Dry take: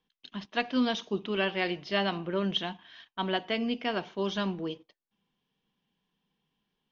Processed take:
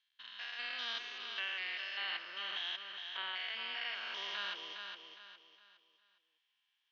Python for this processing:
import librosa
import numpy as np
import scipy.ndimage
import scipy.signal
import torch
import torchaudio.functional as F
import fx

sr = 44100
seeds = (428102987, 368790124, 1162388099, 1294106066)

y = fx.spec_steps(x, sr, hold_ms=200)
y = fx.ladder_bandpass(y, sr, hz=2300.0, resonance_pct=20)
y = fx.high_shelf(y, sr, hz=2800.0, db=9.0)
y = fx.rider(y, sr, range_db=4, speed_s=0.5)
y = fx.echo_feedback(y, sr, ms=411, feedback_pct=35, wet_db=-6.0)
y = y * librosa.db_to_amplitude(8.0)